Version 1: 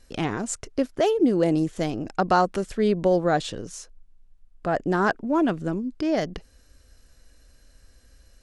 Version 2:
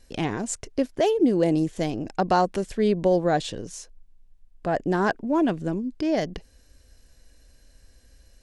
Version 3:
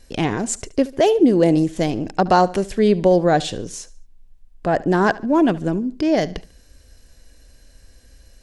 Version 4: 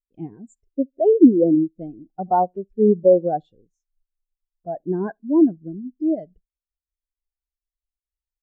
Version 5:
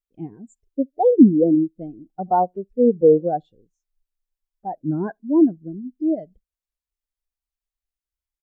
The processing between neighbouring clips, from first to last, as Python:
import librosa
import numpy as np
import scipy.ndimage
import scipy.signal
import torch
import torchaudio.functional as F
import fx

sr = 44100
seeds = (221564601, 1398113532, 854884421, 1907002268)

y1 = fx.peak_eq(x, sr, hz=1300.0, db=-7.5, octaves=0.32)
y2 = fx.echo_feedback(y1, sr, ms=72, feedback_pct=37, wet_db=-19.5)
y2 = y2 * 10.0 ** (6.0 / 20.0)
y3 = fx.spectral_expand(y2, sr, expansion=2.5)
y4 = fx.record_warp(y3, sr, rpm=33.33, depth_cents=250.0)